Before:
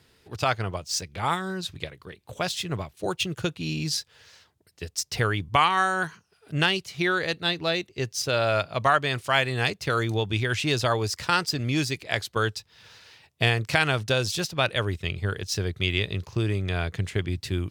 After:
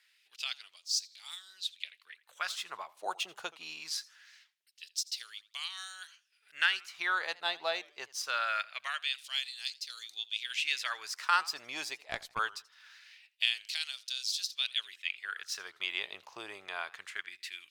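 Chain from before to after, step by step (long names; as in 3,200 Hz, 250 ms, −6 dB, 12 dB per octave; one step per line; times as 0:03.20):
auto-filter high-pass sine 0.23 Hz 800–4,400 Hz
0:11.98–0:12.39: tube saturation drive 10 dB, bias 0.8
feedback echo with a swinging delay time 81 ms, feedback 31%, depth 150 cents, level −21.5 dB
level −8.5 dB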